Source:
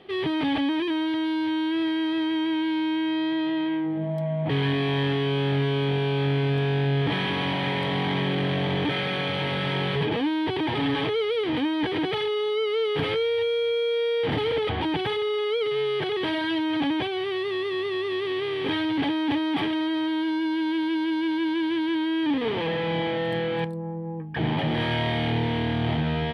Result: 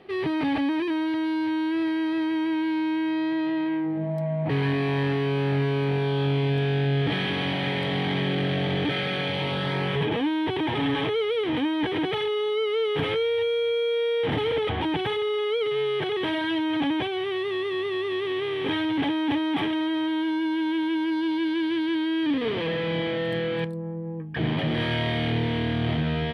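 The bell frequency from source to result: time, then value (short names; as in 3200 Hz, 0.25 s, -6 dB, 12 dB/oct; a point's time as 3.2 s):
bell -10 dB 0.24 oct
5.97 s 3300 Hz
6.66 s 1000 Hz
9.22 s 1000 Hz
9.97 s 4600 Hz
21.02 s 4600 Hz
21.52 s 850 Hz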